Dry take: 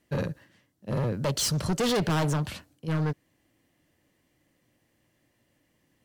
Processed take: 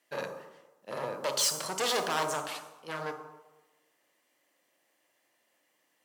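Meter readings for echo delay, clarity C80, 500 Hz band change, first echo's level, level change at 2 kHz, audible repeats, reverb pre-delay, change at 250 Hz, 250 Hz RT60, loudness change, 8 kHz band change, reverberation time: none, 9.5 dB, -3.5 dB, none, 0.0 dB, none, 24 ms, -15.5 dB, 0.95 s, -3.5 dB, +1.0 dB, 1.1 s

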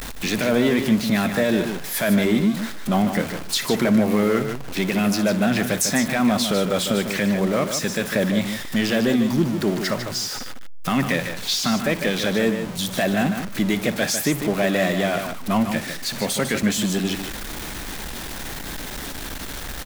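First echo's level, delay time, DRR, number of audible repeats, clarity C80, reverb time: -16.0 dB, 58 ms, none, 2, none, none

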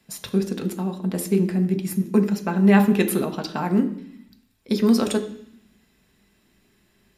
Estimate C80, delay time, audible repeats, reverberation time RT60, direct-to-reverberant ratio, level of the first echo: 15.0 dB, none, none, 0.60 s, 4.5 dB, none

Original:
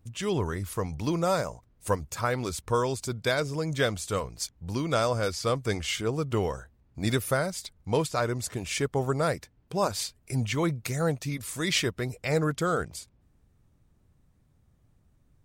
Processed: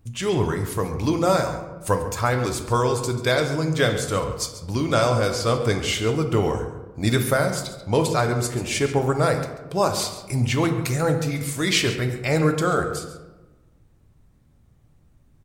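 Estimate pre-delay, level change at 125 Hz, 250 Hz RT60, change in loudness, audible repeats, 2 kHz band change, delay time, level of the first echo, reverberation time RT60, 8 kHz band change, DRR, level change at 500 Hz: 3 ms, +7.0 dB, 1.4 s, +6.5 dB, 1, +6.0 dB, 0.138 s, -14.5 dB, 1.2 s, +5.5 dB, 4.5 dB, +6.5 dB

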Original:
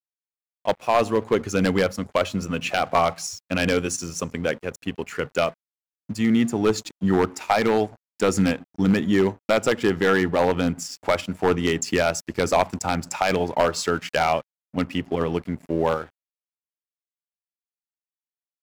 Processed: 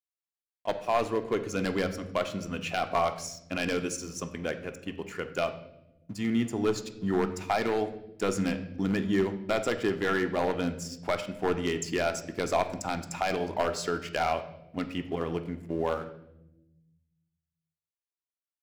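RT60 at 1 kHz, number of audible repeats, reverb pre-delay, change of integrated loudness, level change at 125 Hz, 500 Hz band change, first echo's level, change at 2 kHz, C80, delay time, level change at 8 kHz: 0.70 s, none, 3 ms, -7.5 dB, -8.0 dB, -7.0 dB, none, -7.5 dB, 14.0 dB, none, -8.0 dB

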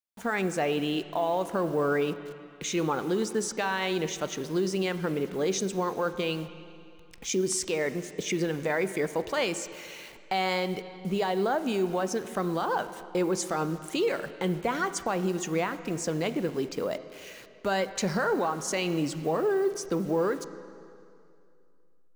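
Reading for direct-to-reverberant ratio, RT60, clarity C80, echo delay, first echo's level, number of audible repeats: 11.5 dB, 2.5 s, 13.0 dB, none, none, none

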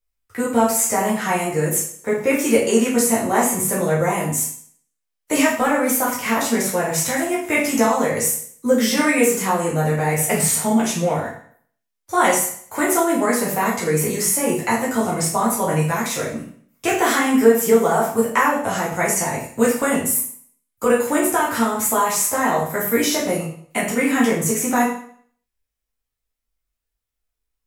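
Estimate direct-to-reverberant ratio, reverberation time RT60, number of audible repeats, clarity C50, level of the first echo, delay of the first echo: -6.0 dB, 0.55 s, none, 4.5 dB, none, none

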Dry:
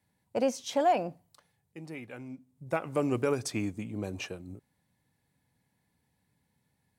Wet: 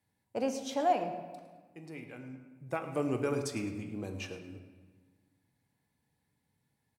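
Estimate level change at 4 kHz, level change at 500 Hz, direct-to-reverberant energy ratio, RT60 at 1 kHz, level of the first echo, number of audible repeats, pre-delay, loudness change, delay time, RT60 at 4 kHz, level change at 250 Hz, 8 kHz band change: -3.5 dB, -3.5 dB, 5.5 dB, 1.4 s, -14.5 dB, 1, 3 ms, -3.0 dB, 0.107 s, 1.0 s, -2.5 dB, -4.0 dB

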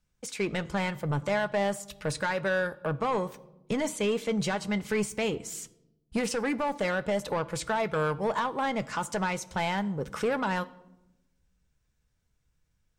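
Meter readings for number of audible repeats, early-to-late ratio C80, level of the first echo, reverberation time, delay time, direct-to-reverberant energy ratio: none, 22.0 dB, none, 0.95 s, none, 11.5 dB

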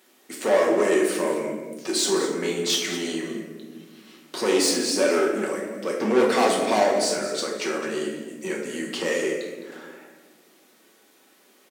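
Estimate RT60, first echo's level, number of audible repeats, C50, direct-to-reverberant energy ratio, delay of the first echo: 1.3 s, -13.0 dB, 1, 3.0 dB, -2.5 dB, 0.211 s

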